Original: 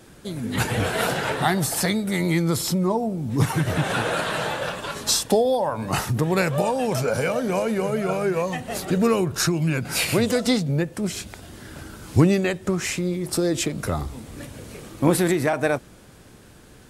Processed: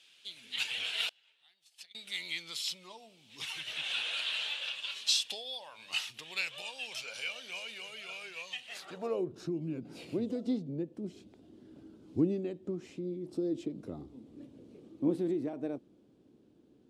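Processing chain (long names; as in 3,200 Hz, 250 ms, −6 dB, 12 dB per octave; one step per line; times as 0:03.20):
high shelf with overshoot 2,400 Hz +9.5 dB, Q 1.5
0:01.09–0:01.95: noise gate −12 dBFS, range −32 dB
band-pass filter sweep 2,700 Hz → 300 Hz, 0:08.64–0:09.33
level −7.5 dB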